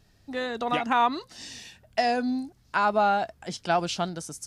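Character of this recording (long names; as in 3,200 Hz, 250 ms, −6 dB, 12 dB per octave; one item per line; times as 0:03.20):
background noise floor −61 dBFS
spectral slope −4.0 dB per octave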